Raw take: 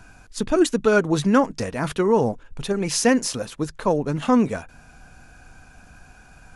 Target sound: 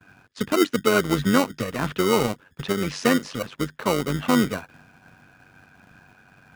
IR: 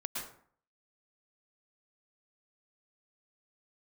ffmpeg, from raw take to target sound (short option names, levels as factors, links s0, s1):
-filter_complex "[0:a]lowpass=2900,acrossover=split=740|1200[s0][s1][s2];[s0]acrusher=samples=26:mix=1:aa=0.000001[s3];[s3][s1][s2]amix=inputs=3:normalize=0,highpass=f=100:w=0.5412,highpass=f=100:w=1.3066,asplit=2[s4][s5];[s5]acompressor=threshold=0.0316:ratio=6,volume=0.794[s6];[s4][s6]amix=inputs=2:normalize=0,tremolo=f=94:d=0.621,agate=range=0.0224:threshold=0.00562:ratio=3:detection=peak"